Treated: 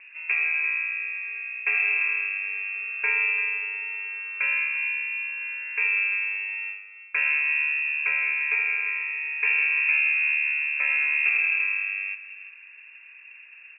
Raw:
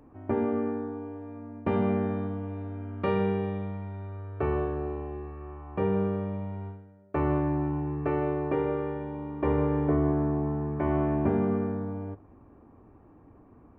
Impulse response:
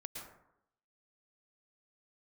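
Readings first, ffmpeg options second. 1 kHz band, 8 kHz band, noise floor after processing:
−9.0 dB, can't be measured, −48 dBFS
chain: -filter_complex "[0:a]asplit=2[link_01][link_02];[link_02]acompressor=threshold=-37dB:ratio=6,volume=1.5dB[link_03];[link_01][link_03]amix=inputs=2:normalize=0,aecho=1:1:344:0.224,lowpass=frequency=2400:width_type=q:width=0.5098,lowpass=frequency=2400:width_type=q:width=0.6013,lowpass=frequency=2400:width_type=q:width=0.9,lowpass=frequency=2400:width_type=q:width=2.563,afreqshift=-2800"

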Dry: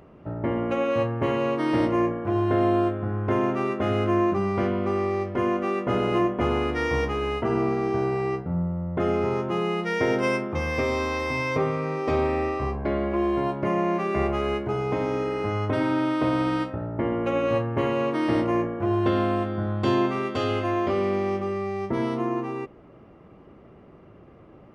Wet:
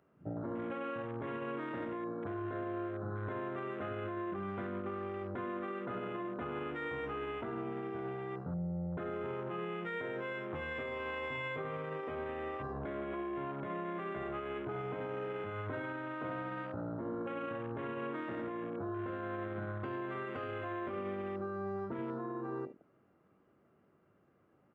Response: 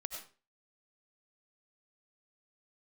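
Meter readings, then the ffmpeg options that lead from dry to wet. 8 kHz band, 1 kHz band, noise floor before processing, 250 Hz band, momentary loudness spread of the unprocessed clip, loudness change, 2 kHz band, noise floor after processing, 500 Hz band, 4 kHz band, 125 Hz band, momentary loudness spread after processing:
can't be measured, −13.5 dB, −50 dBFS, −15.5 dB, 5 LU, −14.5 dB, −11.0 dB, −70 dBFS, −14.5 dB, −16.5 dB, −15.0 dB, 2 LU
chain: -filter_complex "[0:a]highpass=100,equalizer=frequency=1500:width=3.1:gain=8.5,aecho=1:1:21|75:0.299|0.237,acrossover=split=4500[link_01][link_02];[link_02]acompressor=threshold=-56dB:ratio=4:attack=1:release=60[link_03];[link_01][link_03]amix=inputs=2:normalize=0,afwtdn=0.0224,acompressor=threshold=-31dB:ratio=5,alimiter=level_in=3.5dB:limit=-24dB:level=0:latency=1:release=33,volume=-3.5dB,volume=-4dB"

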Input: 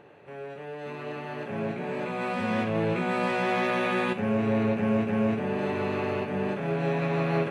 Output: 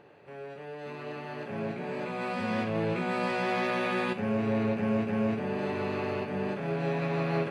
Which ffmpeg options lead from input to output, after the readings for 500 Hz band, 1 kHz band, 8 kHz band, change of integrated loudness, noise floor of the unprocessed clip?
−3.0 dB, −3.0 dB, can't be measured, −3.0 dB, −41 dBFS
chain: -af "equalizer=frequency=4700:width_type=o:width=0.22:gain=8.5,volume=-3dB"

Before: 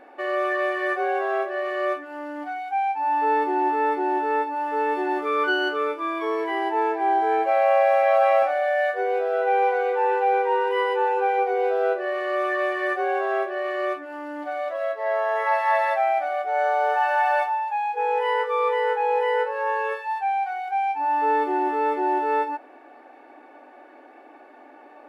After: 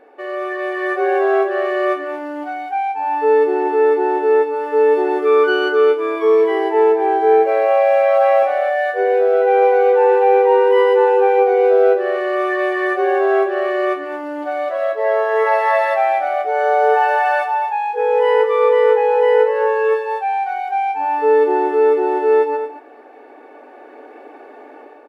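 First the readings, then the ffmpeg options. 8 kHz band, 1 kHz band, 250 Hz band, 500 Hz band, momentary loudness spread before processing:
can't be measured, +4.0 dB, +7.5 dB, +10.5 dB, 6 LU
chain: -filter_complex "[0:a]equalizer=frequency=440:width=4.4:gain=12.5,dynaudnorm=framelen=590:gausssize=3:maxgain=9dB,asplit=2[link_01][link_02];[link_02]aecho=0:1:227:0.316[link_03];[link_01][link_03]amix=inputs=2:normalize=0,volume=-2.5dB"

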